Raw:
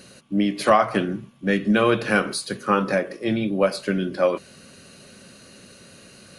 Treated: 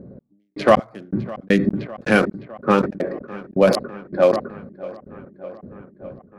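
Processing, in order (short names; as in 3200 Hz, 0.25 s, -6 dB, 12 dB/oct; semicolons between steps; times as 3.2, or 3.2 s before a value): Wiener smoothing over 15 samples; low-pass opened by the level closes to 440 Hz, open at -17.5 dBFS; bell 1200 Hz -5 dB 1.1 oct; in parallel at +2 dB: compressor, threshold -32 dBFS, peak gain reduction 17.5 dB; on the sum: step gate "x..x..x." 80 bpm -60 dB; darkening echo 0.607 s, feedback 76%, low-pass 3300 Hz, level -19.5 dB; sustainer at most 97 dB/s; gain +4 dB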